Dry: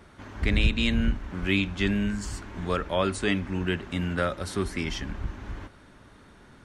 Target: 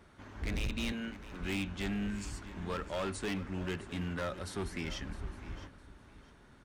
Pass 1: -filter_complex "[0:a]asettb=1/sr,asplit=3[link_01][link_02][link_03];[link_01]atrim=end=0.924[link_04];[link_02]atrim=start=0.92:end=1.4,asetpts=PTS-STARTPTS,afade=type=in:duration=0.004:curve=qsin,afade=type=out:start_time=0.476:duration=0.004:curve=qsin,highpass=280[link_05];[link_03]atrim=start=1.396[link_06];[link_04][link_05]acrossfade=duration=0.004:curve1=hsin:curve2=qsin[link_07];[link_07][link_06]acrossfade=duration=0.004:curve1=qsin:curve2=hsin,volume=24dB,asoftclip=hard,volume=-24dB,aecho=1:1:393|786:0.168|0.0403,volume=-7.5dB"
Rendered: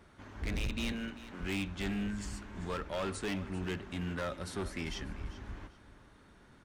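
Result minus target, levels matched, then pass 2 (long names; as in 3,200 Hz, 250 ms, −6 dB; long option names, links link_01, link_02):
echo 266 ms early
-filter_complex "[0:a]asettb=1/sr,asplit=3[link_01][link_02][link_03];[link_01]atrim=end=0.924[link_04];[link_02]atrim=start=0.92:end=1.4,asetpts=PTS-STARTPTS,afade=type=in:duration=0.004:curve=qsin,afade=type=out:start_time=0.476:duration=0.004:curve=qsin,highpass=280[link_05];[link_03]atrim=start=1.396[link_06];[link_04][link_05]acrossfade=duration=0.004:curve1=hsin:curve2=qsin[link_07];[link_07][link_06]acrossfade=duration=0.004:curve1=qsin:curve2=hsin,volume=24dB,asoftclip=hard,volume=-24dB,aecho=1:1:659|1318:0.168|0.0403,volume=-7.5dB"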